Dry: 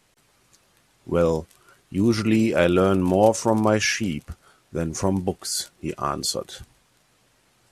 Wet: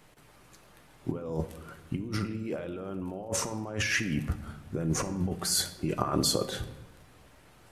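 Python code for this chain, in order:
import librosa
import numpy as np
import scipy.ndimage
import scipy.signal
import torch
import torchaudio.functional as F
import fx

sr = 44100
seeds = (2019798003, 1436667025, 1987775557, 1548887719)

y = fx.peak_eq(x, sr, hz=6300.0, db=-8.0, octaves=2.2)
y = fx.over_compress(y, sr, threshold_db=-31.0, ratio=-1.0)
y = fx.room_shoebox(y, sr, seeds[0], volume_m3=500.0, walls='mixed', distance_m=0.45)
y = y * 10.0 ** (-2.0 / 20.0)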